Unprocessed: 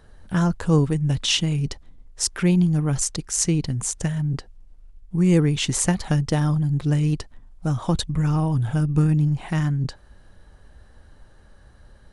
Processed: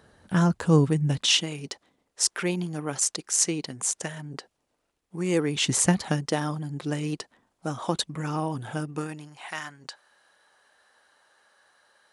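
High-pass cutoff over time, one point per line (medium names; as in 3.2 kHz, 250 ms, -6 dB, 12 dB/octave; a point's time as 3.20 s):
1.03 s 130 Hz
1.49 s 370 Hz
5.43 s 370 Hz
5.83 s 93 Hz
6.26 s 300 Hz
8.78 s 300 Hz
9.33 s 850 Hz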